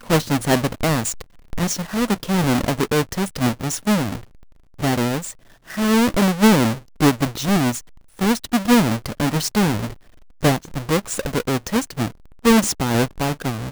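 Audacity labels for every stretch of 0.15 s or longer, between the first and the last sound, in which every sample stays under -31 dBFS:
1.210000	1.530000	silence
4.170000	4.800000	silence
5.310000	5.700000	silence
6.780000	7.010000	silence
7.800000	8.190000	silence
9.930000	10.430000	silence
12.080000	12.450000	silence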